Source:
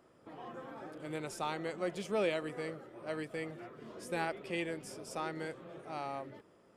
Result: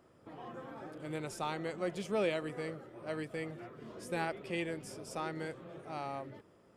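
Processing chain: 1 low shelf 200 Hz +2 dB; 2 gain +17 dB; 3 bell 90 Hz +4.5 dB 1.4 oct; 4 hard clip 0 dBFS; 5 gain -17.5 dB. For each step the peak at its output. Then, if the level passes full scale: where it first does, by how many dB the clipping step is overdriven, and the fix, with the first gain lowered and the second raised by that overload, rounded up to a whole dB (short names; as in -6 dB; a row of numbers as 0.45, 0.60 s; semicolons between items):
-19.5, -2.5, -2.5, -2.5, -20.0 dBFS; no overload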